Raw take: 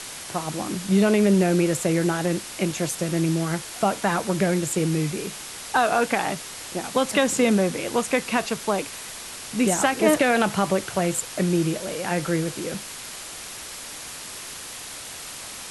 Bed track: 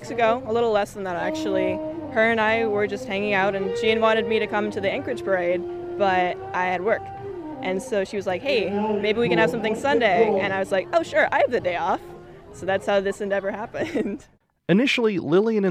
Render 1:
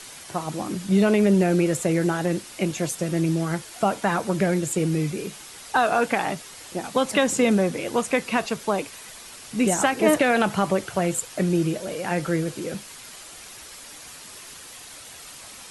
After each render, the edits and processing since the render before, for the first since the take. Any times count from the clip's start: denoiser 7 dB, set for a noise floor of -37 dBFS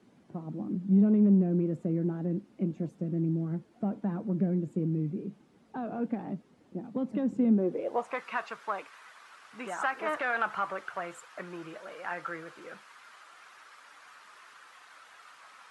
soft clip -12 dBFS, distortion -19 dB; band-pass sweep 220 Hz -> 1300 Hz, 7.49–8.22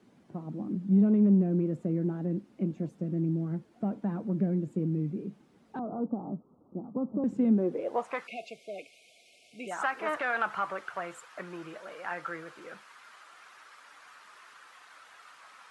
5.79–7.24 steep low-pass 1300 Hz 96 dB/oct; 8.27–9.71 brick-wall FIR band-stop 750–2100 Hz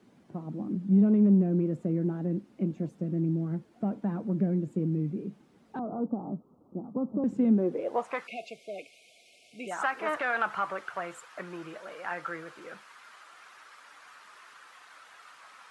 gain +1 dB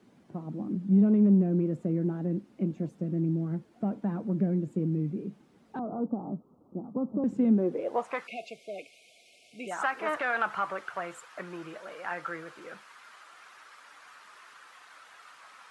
nothing audible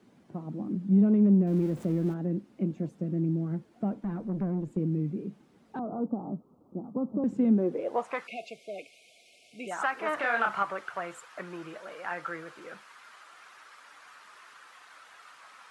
1.47–2.14 zero-crossing step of -43.5 dBFS; 3.93–4.77 tube stage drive 25 dB, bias 0.35; 10.15–10.63 doubler 30 ms -3 dB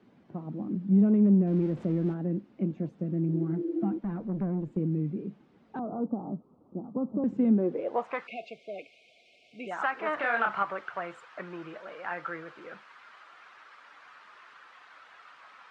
LPF 3600 Hz 12 dB/oct; 3.32–3.95 spectral repair 320–650 Hz before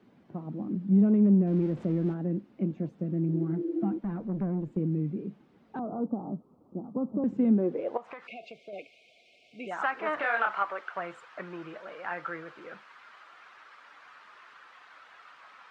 7.97–8.73 compressor 5:1, threshold -39 dBFS; 10.23–10.96 HPF 390 Hz

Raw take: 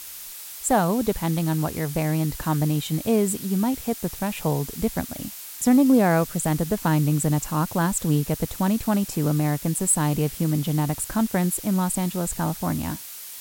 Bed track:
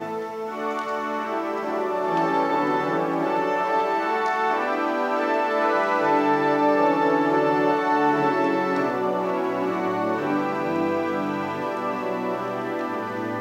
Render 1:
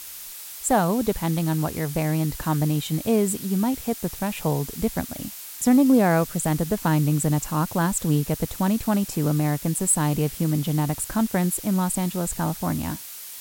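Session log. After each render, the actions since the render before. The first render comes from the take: nothing audible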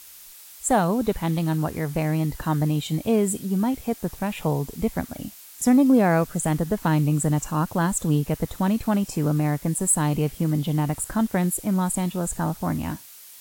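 noise print and reduce 7 dB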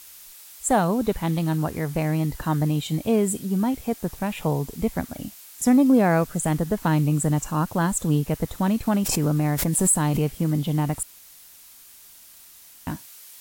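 8.87–10.29 backwards sustainer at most 31 dB/s; 11.03–12.87 room tone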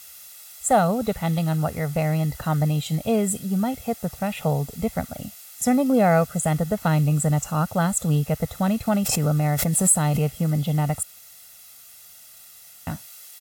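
HPF 70 Hz; comb 1.5 ms, depth 66%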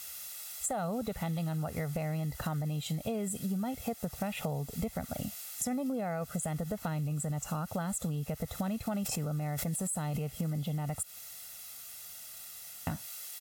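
limiter -16.5 dBFS, peak gain reduction 10.5 dB; compressor 12:1, threshold -31 dBFS, peak gain reduction 11.5 dB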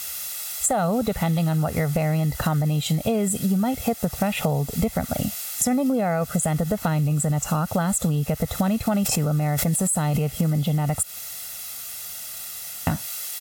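gain +12 dB

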